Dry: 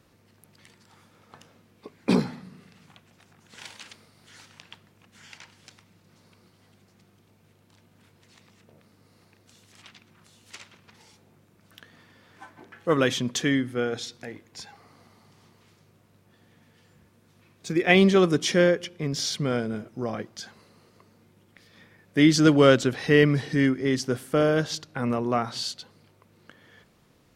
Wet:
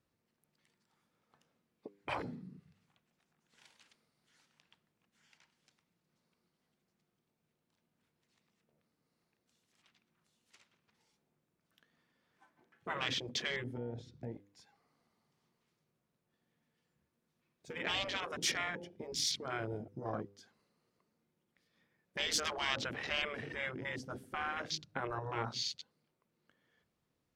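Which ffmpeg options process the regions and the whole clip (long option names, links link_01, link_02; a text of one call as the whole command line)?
ffmpeg -i in.wav -filter_complex "[0:a]asettb=1/sr,asplit=3[link_01][link_02][link_03];[link_01]atrim=end=13.774[link_04];[link_02]atrim=start=13.77:end=14.32,asetpts=PTS-STARTPTS,afade=type=in:duration=0.004:curve=qsin,afade=type=out:start_time=0.546:duration=0.004:curve=qsin,acompressor=threshold=-32dB:ratio=10:attack=3.2:release=140:knee=1:detection=peak,lowpass=frequency=3900:poles=1,equalizer=frequency=110:width_type=o:width=1.2:gain=10[link_05];[link_03]atrim=start=14.316[link_06];[link_04][link_05]acrossfade=duration=0.004:curve1=hsin:curve2=qsin[link_07];[link_07][link_06]acrossfade=duration=0.004:curve1=qsin:curve2=hsin,afwtdn=0.0158,afftfilt=real='re*lt(hypot(re,im),0.178)':imag='im*lt(hypot(re,im),0.178)':win_size=1024:overlap=0.75,bandreject=frequency=100.2:width_type=h:width=4,bandreject=frequency=200.4:width_type=h:width=4,bandreject=frequency=300.6:width_type=h:width=4,bandreject=frequency=400.8:width_type=h:width=4,bandreject=frequency=501:width_type=h:width=4,volume=-4.5dB" out.wav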